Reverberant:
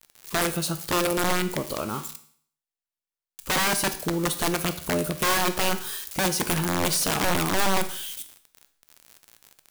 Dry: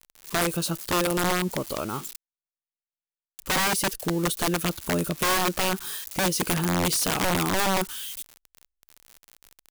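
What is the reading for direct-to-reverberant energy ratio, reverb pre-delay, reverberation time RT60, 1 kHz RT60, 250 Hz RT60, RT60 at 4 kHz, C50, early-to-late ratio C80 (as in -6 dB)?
9.5 dB, 13 ms, 0.55 s, 0.55 s, 0.55 s, 0.55 s, 13.0 dB, 16.5 dB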